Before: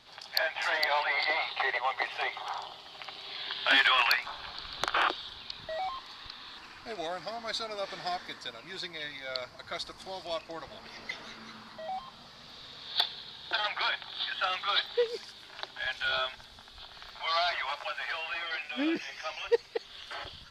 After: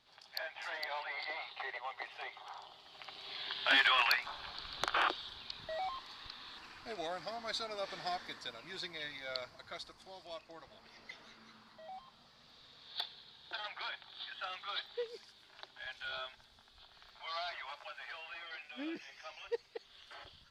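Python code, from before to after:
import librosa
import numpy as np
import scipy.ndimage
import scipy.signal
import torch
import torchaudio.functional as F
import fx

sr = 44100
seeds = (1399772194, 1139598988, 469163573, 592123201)

y = fx.gain(x, sr, db=fx.line((2.54, -12.5), (3.31, -4.5), (9.31, -4.5), (10.05, -12.0)))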